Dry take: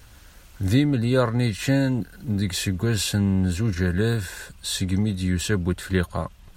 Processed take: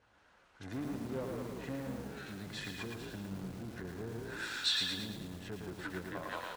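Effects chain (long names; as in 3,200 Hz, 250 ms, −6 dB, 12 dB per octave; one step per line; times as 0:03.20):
on a send: echo with shifted repeats 175 ms, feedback 44%, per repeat −64 Hz, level −4.5 dB
on the sum: treble cut that deepens with the level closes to 380 Hz, closed at −17.5 dBFS
in parallel at −3.5 dB: soft clipping −25.5 dBFS, distortion −7 dB
on the sum: low-pass that shuts in the quiet parts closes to 610 Hz, open at −20 dBFS
first difference
feedback echo at a low word length 112 ms, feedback 55%, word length 10 bits, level −3 dB
level +7.5 dB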